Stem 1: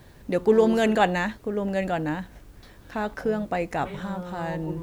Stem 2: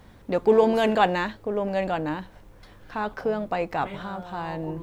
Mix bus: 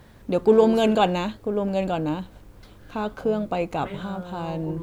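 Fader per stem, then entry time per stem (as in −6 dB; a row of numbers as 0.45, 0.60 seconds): −4.5, −1.0 decibels; 0.00, 0.00 seconds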